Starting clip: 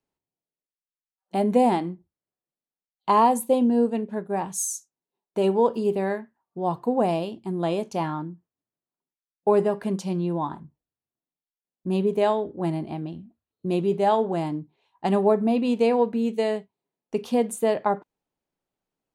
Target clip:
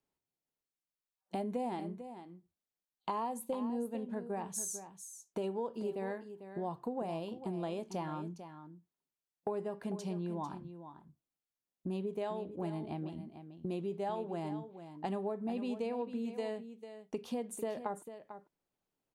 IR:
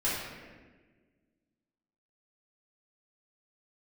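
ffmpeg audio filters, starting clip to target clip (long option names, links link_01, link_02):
-filter_complex "[0:a]acompressor=threshold=-34dB:ratio=4,asplit=2[link_01][link_02];[link_02]aecho=0:1:447:0.282[link_03];[link_01][link_03]amix=inputs=2:normalize=0,volume=-3dB"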